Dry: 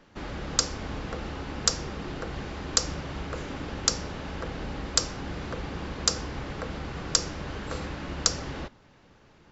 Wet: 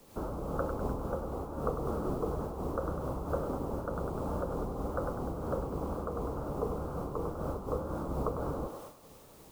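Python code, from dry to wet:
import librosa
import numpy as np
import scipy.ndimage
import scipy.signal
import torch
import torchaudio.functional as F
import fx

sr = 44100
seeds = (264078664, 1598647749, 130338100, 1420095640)

p1 = scipy.signal.sosfilt(scipy.signal.butter(12, 1300.0, 'lowpass', fs=sr, output='sos'), x)
p2 = fx.peak_eq(p1, sr, hz=490.0, db=5.5, octaves=0.68)
p3 = fx.wow_flutter(p2, sr, seeds[0], rate_hz=2.1, depth_cents=130.0)
p4 = fx.quant_dither(p3, sr, seeds[1], bits=8, dither='triangular')
p5 = p3 + F.gain(torch.from_numpy(p4), -11.0).numpy()
p6 = fx.rider(p5, sr, range_db=10, speed_s=0.5)
p7 = fx.echo_thinned(p6, sr, ms=100, feedback_pct=66, hz=380.0, wet_db=-6.0)
y = fx.am_noise(p7, sr, seeds[2], hz=5.7, depth_pct=65)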